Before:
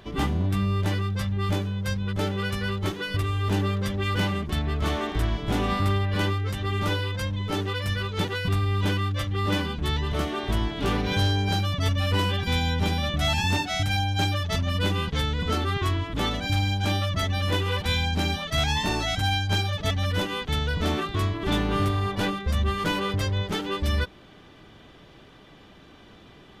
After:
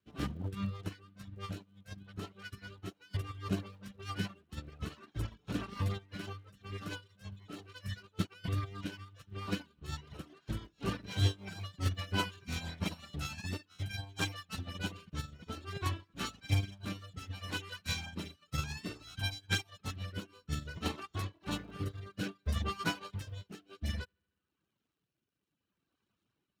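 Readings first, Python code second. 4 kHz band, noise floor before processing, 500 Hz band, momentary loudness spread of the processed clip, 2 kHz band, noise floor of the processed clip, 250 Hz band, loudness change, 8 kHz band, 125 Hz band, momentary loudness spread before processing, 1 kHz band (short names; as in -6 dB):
-14.0 dB, -50 dBFS, -17.0 dB, 13 LU, -13.0 dB, under -85 dBFS, -13.0 dB, -13.5 dB, -9.5 dB, -13.5 dB, 4 LU, -15.5 dB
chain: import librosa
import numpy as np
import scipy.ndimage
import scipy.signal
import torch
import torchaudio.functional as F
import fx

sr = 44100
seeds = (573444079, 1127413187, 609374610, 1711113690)

y = fx.lower_of_two(x, sr, delay_ms=0.72)
y = fx.dereverb_blind(y, sr, rt60_s=1.3)
y = scipy.signal.sosfilt(scipy.signal.butter(2, 79.0, 'highpass', fs=sr, output='sos'), y)
y = fx.rotary_switch(y, sr, hz=6.0, then_hz=0.6, switch_at_s=11.74)
y = fx.dmg_crackle(y, sr, seeds[0], per_s=86.0, level_db=-48.0)
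y = fx.echo_bbd(y, sr, ms=75, stages=2048, feedback_pct=79, wet_db=-23)
y = fx.upward_expand(y, sr, threshold_db=-44.0, expansion=2.5)
y = F.gain(torch.from_numpy(y), 1.0).numpy()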